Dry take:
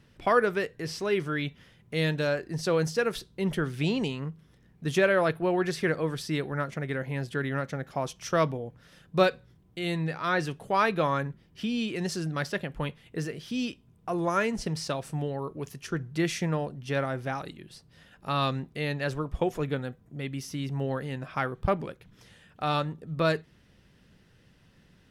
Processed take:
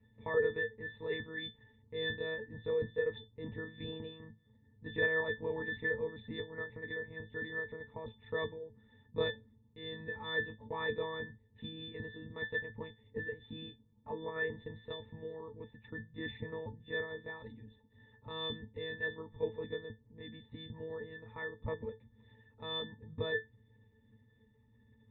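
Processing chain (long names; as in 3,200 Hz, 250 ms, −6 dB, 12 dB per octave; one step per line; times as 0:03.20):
one-pitch LPC vocoder at 8 kHz 160 Hz
resonances in every octave A, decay 0.15 s
level +5 dB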